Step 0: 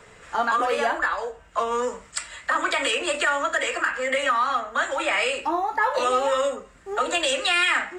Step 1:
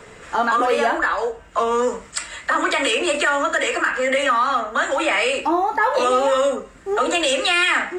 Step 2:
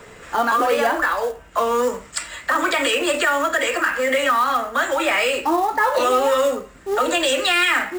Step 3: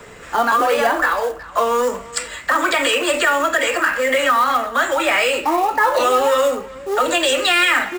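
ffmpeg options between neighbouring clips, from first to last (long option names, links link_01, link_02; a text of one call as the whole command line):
ffmpeg -i in.wav -filter_complex "[0:a]equalizer=frequency=300:width=1:gain=5,asplit=2[link_01][link_02];[link_02]alimiter=limit=-19.5dB:level=0:latency=1,volume=-1dB[link_03];[link_01][link_03]amix=inputs=2:normalize=0" out.wav
ffmpeg -i in.wav -af "acrusher=bits=5:mode=log:mix=0:aa=0.000001" out.wav
ffmpeg -i in.wav -filter_complex "[0:a]asplit=2[link_01][link_02];[link_02]adelay=370,highpass=300,lowpass=3400,asoftclip=type=hard:threshold=-16.5dB,volume=-18dB[link_03];[link_01][link_03]amix=inputs=2:normalize=0,acrossover=split=430|1700[link_04][link_05][link_06];[link_04]asoftclip=type=tanh:threshold=-26.5dB[link_07];[link_07][link_05][link_06]amix=inputs=3:normalize=0,volume=2.5dB" out.wav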